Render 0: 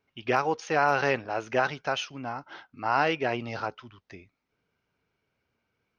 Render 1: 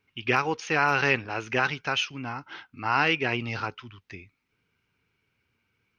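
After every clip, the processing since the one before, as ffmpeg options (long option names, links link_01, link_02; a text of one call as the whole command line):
ffmpeg -i in.wav -af "equalizer=frequency=100:width_type=o:width=0.67:gain=4,equalizer=frequency=630:width_type=o:width=0.67:gain=-10,equalizer=frequency=2500:width_type=o:width=0.67:gain=6,volume=2.5dB" out.wav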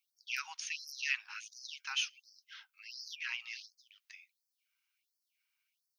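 ffmpeg -i in.wav -af "aderivative,afftfilt=real='re*gte(b*sr/1024,710*pow(4400/710,0.5+0.5*sin(2*PI*1.4*pts/sr)))':imag='im*gte(b*sr/1024,710*pow(4400/710,0.5+0.5*sin(2*PI*1.4*pts/sr)))':win_size=1024:overlap=0.75,volume=1dB" out.wav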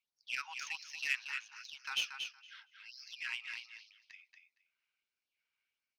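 ffmpeg -i in.wav -filter_complex "[0:a]asplit=2[link_01][link_02];[link_02]aecho=0:1:232|464|696:0.501|0.0802|0.0128[link_03];[link_01][link_03]amix=inputs=2:normalize=0,adynamicsmooth=sensitivity=5:basefreq=4100" out.wav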